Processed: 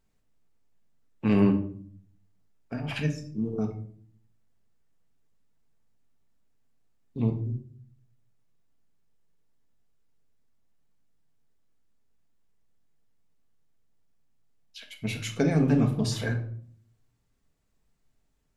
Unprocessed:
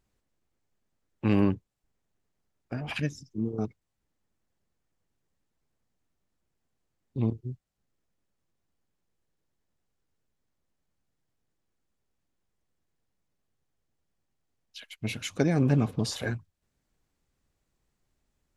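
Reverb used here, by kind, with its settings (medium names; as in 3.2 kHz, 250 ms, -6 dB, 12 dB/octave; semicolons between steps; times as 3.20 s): simulated room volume 710 m³, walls furnished, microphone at 1.6 m; trim -1 dB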